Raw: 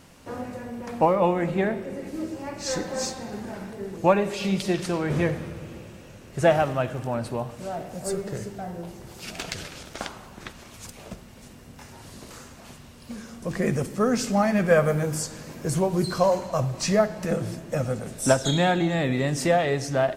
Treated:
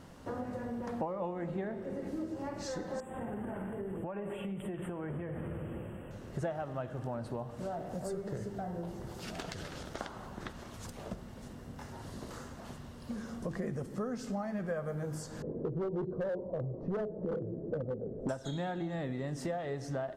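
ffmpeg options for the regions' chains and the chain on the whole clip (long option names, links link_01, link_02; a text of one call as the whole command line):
ffmpeg -i in.wav -filter_complex "[0:a]asettb=1/sr,asplit=3[link_01][link_02][link_03];[link_01]atrim=end=3.004[link_04];[link_02]atrim=start=3:end=6.11,asetpts=PTS-STARTPTS,afade=type=in:duration=0.004:curve=qsin,afade=type=out:start_time=3.106:duration=0.004:curve=qsin,acompressor=threshold=-32dB:ratio=10:attack=3.2:release=140:knee=1:detection=peak,asuperstop=centerf=5100:order=12:qfactor=1.1[link_05];[link_03]atrim=start=6.106[link_06];[link_04][link_05]acrossfade=duration=0.004:curve1=hsin:curve2=qsin[link_07];[link_07][link_06]acrossfade=duration=0.004:curve1=qsin:curve2=hsin,asettb=1/sr,asplit=3[link_08][link_09][link_10];[link_08]atrim=end=15.424[link_11];[link_09]atrim=start=15.42:end=18.29,asetpts=PTS-STARTPTS,afade=type=in:duration=0.004:curve=qsin,afade=type=out:start_time=2.866:duration=0.004:curve=qsin,lowpass=frequency=440:width_type=q:width=3.8,asoftclip=type=hard:threshold=-17dB[link_12];[link_10]atrim=start=18.286[link_13];[link_11][link_12]acrossfade=duration=0.004:curve1=hsin:curve2=qsin[link_14];[link_14][link_13]acrossfade=duration=0.004:curve1=qsin:curve2=hsin,equalizer=frequency=2400:width=4.2:gain=-7.5,acompressor=threshold=-35dB:ratio=5,highshelf=frequency=3100:gain=-10" out.wav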